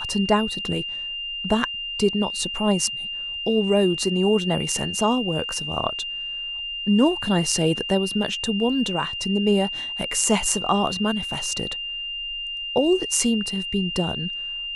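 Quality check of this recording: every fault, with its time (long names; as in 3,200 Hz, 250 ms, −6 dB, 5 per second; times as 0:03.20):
whistle 2,800 Hz −28 dBFS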